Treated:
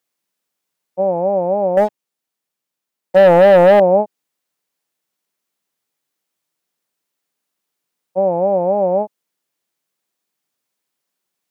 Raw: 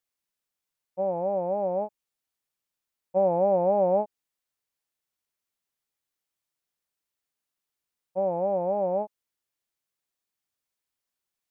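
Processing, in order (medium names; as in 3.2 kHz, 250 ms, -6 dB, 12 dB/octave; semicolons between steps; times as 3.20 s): high-pass 130 Hz 24 dB/octave; peaking EQ 290 Hz +3.5 dB 2.9 oct; 1.77–3.80 s: waveshaping leveller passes 2; trim +8 dB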